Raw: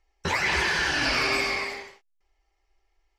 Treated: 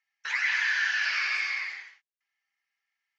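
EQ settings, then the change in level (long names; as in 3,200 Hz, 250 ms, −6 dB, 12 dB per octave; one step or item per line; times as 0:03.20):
high-pass with resonance 1,700 Hz, resonance Q 2.8
elliptic low-pass filter 6,700 Hz, stop band 40 dB
−7.5 dB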